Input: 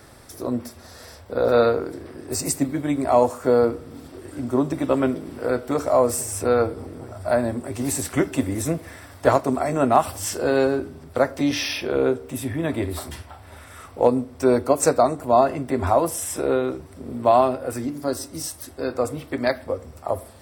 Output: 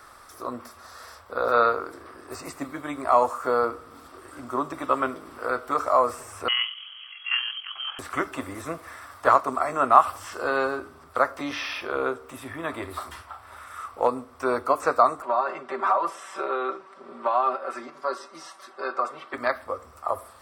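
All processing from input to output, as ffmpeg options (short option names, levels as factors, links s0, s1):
-filter_complex "[0:a]asettb=1/sr,asplit=3[s0][s1][s2];[s0]atrim=end=6.484[s3];[s1]atrim=start=6.48:end=7.99,asetpts=PTS-STARTPTS,afade=t=in:d=0.004:c=qsin,afade=t=out:st=1.506:d=0.004:c=qsin,equalizer=f=110:t=o:w=1:g=-7,lowpass=f=2900:t=q:w=0.5098,lowpass=f=2900:t=q:w=0.6013,lowpass=f=2900:t=q:w=0.9,lowpass=f=2900:t=q:w=2.563,afreqshift=-3400,tremolo=f=43:d=0.4[s4];[s2]atrim=start=7.986[s5];[s3][s4]acrossfade=d=0.004:c1=hsin:c2=qsin[s6];[s6][s5]acrossfade=d=0.004:c1=qsin:c2=hsin,asettb=1/sr,asplit=3[s7][s8][s9];[s7]atrim=end=15.224[s10];[s8]atrim=start=15.22:end=19.34,asetpts=PTS-STARTPTS,afade=t=in:d=0.004:c=qsin,afade=t=out:st=4.116:d=0.004:c=qsin,acompressor=threshold=0.126:ratio=6:attack=3.2:release=140:knee=1:detection=peak,highpass=290,lowpass=4100,aecho=1:1:5.2:0.89,atrim=end_sample=181692[s11];[s9]atrim=start=19.336[s12];[s10][s11]acrossfade=d=0.004:c1=hsin:c2=qsin[s13];[s13][s12]acrossfade=d=0.004:c1=qsin:c2=hsin,equalizer=f=140:w=0.45:g=-12.5,acrossover=split=3700[s14][s15];[s15]acompressor=threshold=0.00794:ratio=4:attack=1:release=60[s16];[s14][s16]amix=inputs=2:normalize=0,equalizer=f=1200:w=2.4:g=15,volume=0.668"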